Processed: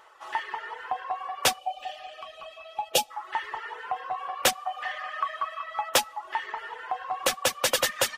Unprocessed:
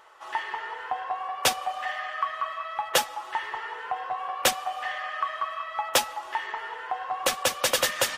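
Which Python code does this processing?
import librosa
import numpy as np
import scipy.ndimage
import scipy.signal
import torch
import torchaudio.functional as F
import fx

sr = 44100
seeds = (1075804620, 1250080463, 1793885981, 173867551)

y = fx.spec_box(x, sr, start_s=1.58, length_s=1.52, low_hz=880.0, high_hz=2300.0, gain_db=-16)
y = fx.dereverb_blind(y, sr, rt60_s=0.65)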